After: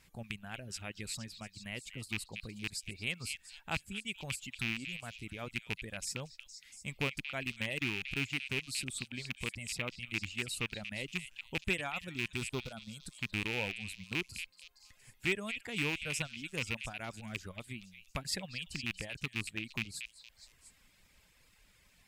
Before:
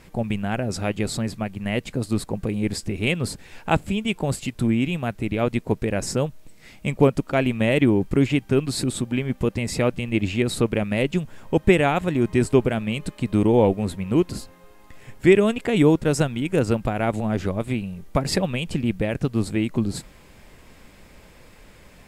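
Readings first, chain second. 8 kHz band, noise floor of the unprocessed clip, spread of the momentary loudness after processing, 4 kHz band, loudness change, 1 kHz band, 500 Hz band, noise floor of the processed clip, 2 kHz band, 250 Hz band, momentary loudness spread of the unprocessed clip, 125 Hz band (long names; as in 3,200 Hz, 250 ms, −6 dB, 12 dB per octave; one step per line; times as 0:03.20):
−8.5 dB, −49 dBFS, 11 LU, −6.5 dB, −15.5 dB, −18.5 dB, −23.5 dB, −67 dBFS, −7.0 dB, −22.5 dB, 9 LU, −19.5 dB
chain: loose part that buzzes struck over −18 dBFS, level −10 dBFS
reverb reduction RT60 0.99 s
guitar amp tone stack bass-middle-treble 5-5-5
gain on a spectral selection 0:12.37–0:13.04, 1,500–3,200 Hz −14 dB
echo through a band-pass that steps 233 ms, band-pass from 3,000 Hz, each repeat 0.7 octaves, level −6 dB
level −2.5 dB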